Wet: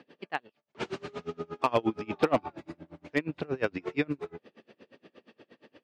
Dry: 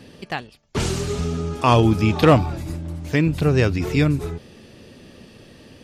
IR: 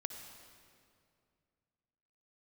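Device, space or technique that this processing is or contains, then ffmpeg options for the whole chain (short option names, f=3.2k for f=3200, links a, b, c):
helicopter radio: -af "highpass=310,lowpass=2.6k,aeval=exprs='val(0)*pow(10,-30*(0.5-0.5*cos(2*PI*8.5*n/s))/20)':c=same,asoftclip=type=hard:threshold=-13dB,volume=-1.5dB"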